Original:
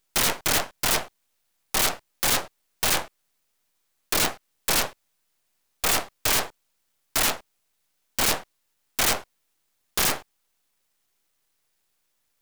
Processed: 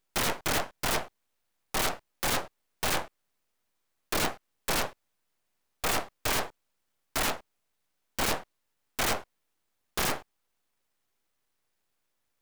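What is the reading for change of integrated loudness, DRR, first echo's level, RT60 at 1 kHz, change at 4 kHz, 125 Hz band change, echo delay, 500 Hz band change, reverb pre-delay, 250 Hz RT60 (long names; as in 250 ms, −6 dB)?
−7.0 dB, no reverb audible, no echo audible, no reverb audible, −7.0 dB, −2.0 dB, no echo audible, −2.5 dB, no reverb audible, no reverb audible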